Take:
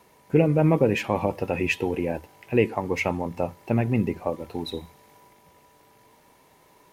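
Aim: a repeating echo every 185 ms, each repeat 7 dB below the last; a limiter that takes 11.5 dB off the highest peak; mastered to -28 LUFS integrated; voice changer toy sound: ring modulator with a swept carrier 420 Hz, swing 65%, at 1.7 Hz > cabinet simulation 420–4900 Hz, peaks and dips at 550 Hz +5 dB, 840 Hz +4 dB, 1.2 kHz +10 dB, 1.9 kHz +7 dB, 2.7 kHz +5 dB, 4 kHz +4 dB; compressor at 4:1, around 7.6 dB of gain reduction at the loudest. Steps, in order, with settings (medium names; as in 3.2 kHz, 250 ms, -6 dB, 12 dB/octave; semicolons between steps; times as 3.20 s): compression 4:1, threshold -23 dBFS; peak limiter -22.5 dBFS; feedback delay 185 ms, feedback 45%, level -7 dB; ring modulator with a swept carrier 420 Hz, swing 65%, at 1.7 Hz; cabinet simulation 420–4900 Hz, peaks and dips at 550 Hz +5 dB, 840 Hz +4 dB, 1.2 kHz +10 dB, 1.9 kHz +7 dB, 2.7 kHz +5 dB, 4 kHz +4 dB; trim +5.5 dB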